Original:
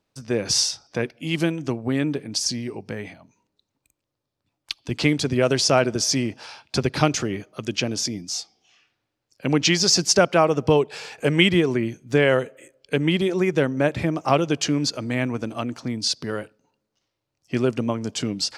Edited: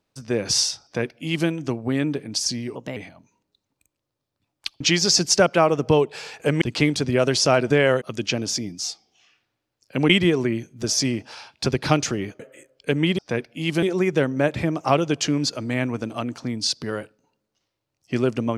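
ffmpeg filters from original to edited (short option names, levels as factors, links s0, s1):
-filter_complex "[0:a]asplit=12[s0][s1][s2][s3][s4][s5][s6][s7][s8][s9][s10][s11];[s0]atrim=end=2.754[s12];[s1]atrim=start=2.75:end=3.01,asetpts=PTS-STARTPTS,asetrate=53361,aresample=44100,atrim=end_sample=9476,asetpts=PTS-STARTPTS[s13];[s2]atrim=start=3.006:end=4.852[s14];[s3]atrim=start=9.588:end=11.402[s15];[s4]atrim=start=4.848:end=5.942[s16];[s5]atrim=start=12.128:end=12.442[s17];[s6]atrim=start=7.508:end=9.592[s18];[s7]atrim=start=11.398:end=12.132[s19];[s8]atrim=start=5.938:end=7.512[s20];[s9]atrim=start=12.438:end=13.232[s21];[s10]atrim=start=0.838:end=1.482[s22];[s11]atrim=start=13.228[s23];[s12][s13]acrossfade=d=0.004:c1=hsin:c2=hsin[s24];[s24][s14]acrossfade=d=0.004:c1=hsin:c2=hsin[s25];[s25][s15]acrossfade=d=0.004:c1=hsin:c2=hsin[s26];[s26][s16]acrossfade=d=0.004:c1=hsin:c2=hsin[s27];[s27][s17]acrossfade=d=0.004:c1=hsin:c2=hsin[s28];[s28][s18]acrossfade=d=0.004:c1=hsin:c2=hsin[s29];[s29][s19]acrossfade=d=0.004:c1=hsin:c2=hsin[s30];[s30][s20]acrossfade=d=0.004:c1=hsin:c2=hsin[s31];[s31][s21]acrossfade=d=0.004:c1=hsin:c2=hsin[s32];[s32][s22]acrossfade=d=0.004:c1=hsin:c2=hsin[s33];[s33][s23]acrossfade=d=0.004:c1=hsin:c2=hsin"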